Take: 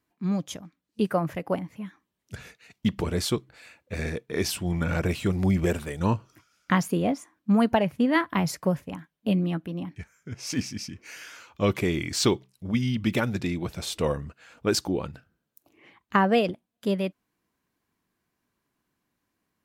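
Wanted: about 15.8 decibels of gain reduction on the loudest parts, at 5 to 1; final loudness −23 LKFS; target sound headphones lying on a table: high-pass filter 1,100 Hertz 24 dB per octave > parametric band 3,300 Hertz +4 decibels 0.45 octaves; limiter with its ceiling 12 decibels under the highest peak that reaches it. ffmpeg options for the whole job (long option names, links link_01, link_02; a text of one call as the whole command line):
ffmpeg -i in.wav -af "acompressor=threshold=-36dB:ratio=5,alimiter=level_in=7dB:limit=-24dB:level=0:latency=1,volume=-7dB,highpass=frequency=1100:width=0.5412,highpass=frequency=1100:width=1.3066,equalizer=frequency=3300:width_type=o:width=0.45:gain=4,volume=24.5dB" out.wav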